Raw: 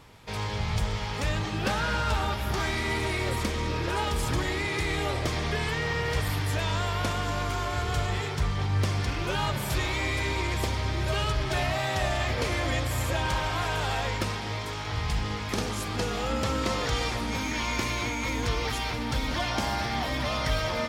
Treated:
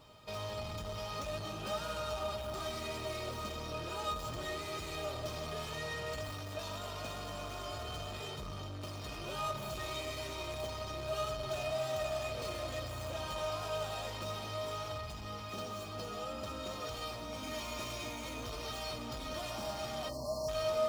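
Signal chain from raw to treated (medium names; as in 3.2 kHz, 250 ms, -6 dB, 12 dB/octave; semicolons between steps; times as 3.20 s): median filter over 5 samples; 14.98–17.43 s: flange 1.5 Hz, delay 9.6 ms, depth 1.4 ms, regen -65%; saturation -32.5 dBFS, distortion -8 dB; high-pass 96 Hz 6 dB/octave; reverberation RT60 1.3 s, pre-delay 68 ms, DRR 16.5 dB; 20.09–20.48 s: spectral selection erased 1.2–4.1 kHz; peaking EQ 1.9 kHz -11 dB 0.56 oct; feedback comb 620 Hz, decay 0.15 s, harmonics all, mix 90%; trim +11 dB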